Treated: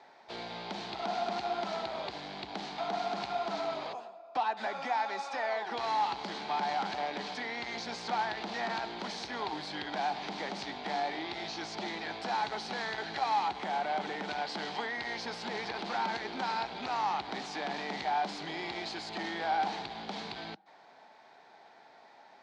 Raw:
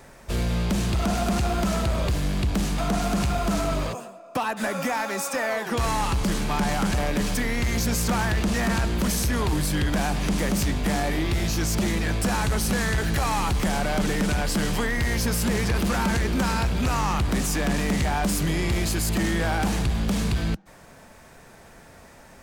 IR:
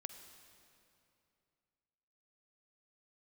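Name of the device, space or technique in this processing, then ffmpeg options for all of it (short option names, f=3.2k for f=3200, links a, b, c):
phone earpiece: -filter_complex "[0:a]highpass=490,equalizer=f=530:t=q:w=4:g=-7,equalizer=f=800:t=q:w=4:g=8,equalizer=f=1.2k:t=q:w=4:g=-6,equalizer=f=1.7k:t=q:w=4:g=-4,equalizer=f=2.7k:t=q:w=4:g=-6,equalizer=f=4.2k:t=q:w=4:g=4,lowpass=f=4.3k:w=0.5412,lowpass=f=4.3k:w=1.3066,asettb=1/sr,asplit=3[a][b][c];[a]atrim=end=13.484[d];[b]atrim=start=13.48:end=14.28,asetpts=PTS-STARTPTS,afade=t=in:d=0.004:c=qsin,afade=t=out:st=0.796:d=0.004:c=qsin,equalizer=f=4.8k:w=1.5:g=-5.5[e];[c]atrim=start=14.276[f];[d][e]acrossfade=d=0.004:c1=hsin:c2=qsin[g];[g][f]acrossfade=d=0.004:c1=qsin:c2=hsin,volume=-5dB"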